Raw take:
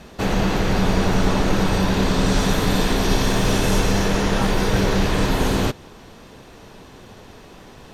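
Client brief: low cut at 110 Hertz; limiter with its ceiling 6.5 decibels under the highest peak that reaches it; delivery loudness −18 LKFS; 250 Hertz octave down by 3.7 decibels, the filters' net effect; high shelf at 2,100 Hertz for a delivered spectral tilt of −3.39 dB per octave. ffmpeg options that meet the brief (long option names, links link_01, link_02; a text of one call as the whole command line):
ffmpeg -i in.wav -af "highpass=110,equalizer=frequency=250:width_type=o:gain=-5,highshelf=frequency=2100:gain=5.5,volume=4dB,alimiter=limit=-9dB:level=0:latency=1" out.wav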